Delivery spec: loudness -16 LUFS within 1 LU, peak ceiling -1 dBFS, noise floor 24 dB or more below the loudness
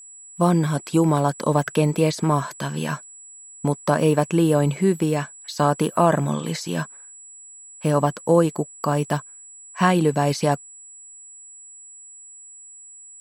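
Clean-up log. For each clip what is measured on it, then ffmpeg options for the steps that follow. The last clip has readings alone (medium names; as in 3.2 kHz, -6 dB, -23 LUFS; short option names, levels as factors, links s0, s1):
steady tone 7.8 kHz; tone level -41 dBFS; loudness -21.5 LUFS; peak level -4.5 dBFS; loudness target -16.0 LUFS
-> -af "bandreject=f=7800:w=30"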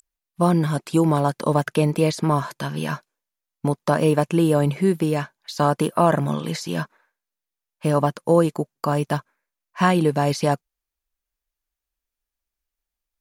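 steady tone not found; loudness -21.5 LUFS; peak level -4.5 dBFS; loudness target -16.0 LUFS
-> -af "volume=1.88,alimiter=limit=0.891:level=0:latency=1"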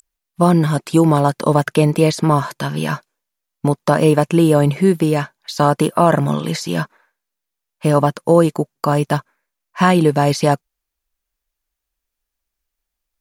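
loudness -16.5 LUFS; peak level -1.0 dBFS; noise floor -81 dBFS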